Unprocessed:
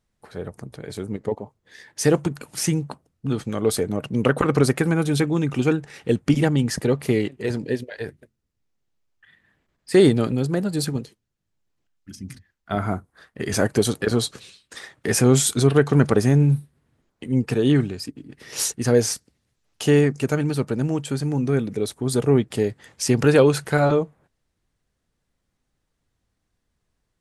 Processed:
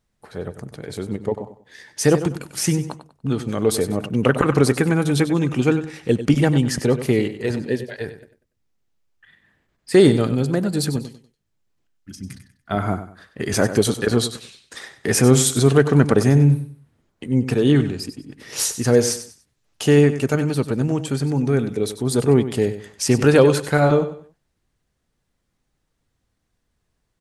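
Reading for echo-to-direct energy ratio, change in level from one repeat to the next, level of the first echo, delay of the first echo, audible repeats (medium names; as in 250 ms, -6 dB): -11.5 dB, -11.0 dB, -12.0 dB, 96 ms, 3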